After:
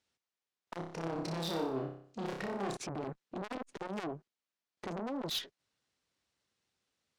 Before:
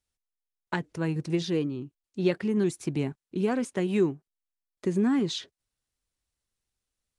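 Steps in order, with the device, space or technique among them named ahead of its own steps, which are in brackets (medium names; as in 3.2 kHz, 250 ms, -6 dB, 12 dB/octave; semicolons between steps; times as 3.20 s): valve radio (band-pass 150–5500 Hz; valve stage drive 38 dB, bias 0.2; transformer saturation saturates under 580 Hz); 0.76–2.77 s: flutter echo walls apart 5.2 m, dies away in 0.55 s; trim +7 dB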